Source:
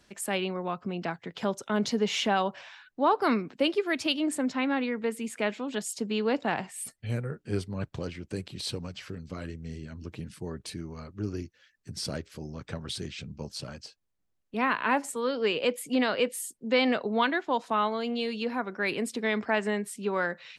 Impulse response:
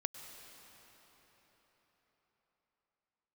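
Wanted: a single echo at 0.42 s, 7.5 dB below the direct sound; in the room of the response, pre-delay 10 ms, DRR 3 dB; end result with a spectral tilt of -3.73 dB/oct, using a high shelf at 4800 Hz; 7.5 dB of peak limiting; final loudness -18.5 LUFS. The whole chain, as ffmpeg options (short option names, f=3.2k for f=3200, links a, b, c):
-filter_complex "[0:a]highshelf=f=4.8k:g=7,alimiter=limit=-18dB:level=0:latency=1,aecho=1:1:420:0.422,asplit=2[a][b];[1:a]atrim=start_sample=2205,adelay=10[c];[b][c]afir=irnorm=-1:irlink=0,volume=-2.5dB[d];[a][d]amix=inputs=2:normalize=0,volume=10dB"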